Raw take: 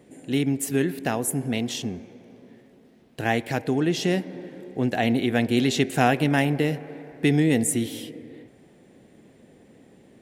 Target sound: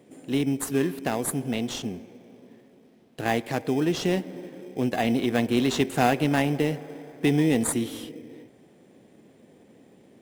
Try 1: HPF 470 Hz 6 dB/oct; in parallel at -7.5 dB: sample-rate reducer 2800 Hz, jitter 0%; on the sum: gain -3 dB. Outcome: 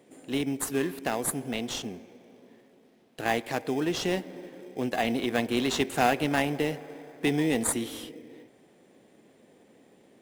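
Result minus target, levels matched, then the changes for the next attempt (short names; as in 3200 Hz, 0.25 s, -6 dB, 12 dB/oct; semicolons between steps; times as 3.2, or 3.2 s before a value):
125 Hz band -4.0 dB
change: HPF 150 Hz 6 dB/oct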